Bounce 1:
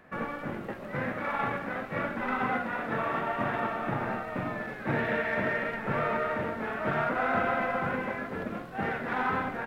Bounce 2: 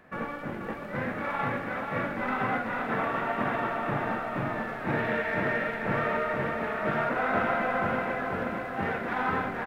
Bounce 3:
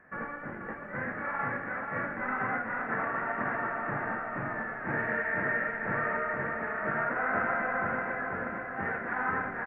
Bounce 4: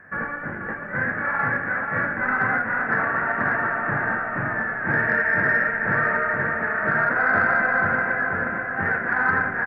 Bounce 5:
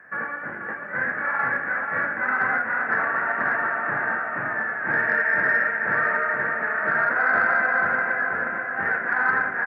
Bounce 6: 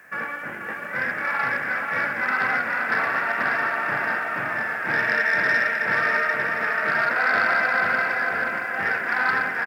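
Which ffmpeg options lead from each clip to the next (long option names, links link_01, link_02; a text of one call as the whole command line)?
ffmpeg -i in.wav -af "aecho=1:1:484|968|1452|1936|2420|2904|3388|3872:0.501|0.301|0.18|0.108|0.065|0.039|0.0234|0.014" out.wav
ffmpeg -i in.wav -af "highshelf=frequency=2600:width_type=q:width=3:gain=-13.5,volume=-6dB" out.wav
ffmpeg -i in.wav -af "equalizer=frequency=100:width_type=o:width=0.33:gain=9,equalizer=frequency=160:width_type=o:width=0.33:gain=4,equalizer=frequency=1600:width_type=o:width=0.33:gain=8,acontrast=57" out.wav
ffmpeg -i in.wav -af "highpass=frequency=460:poles=1" out.wav
ffmpeg -i in.wav -filter_complex "[0:a]aexciter=amount=5.4:drive=8.3:freq=2500,asplit=2[link_01][link_02];[link_02]aecho=0:1:634:0.355[link_03];[link_01][link_03]amix=inputs=2:normalize=0" out.wav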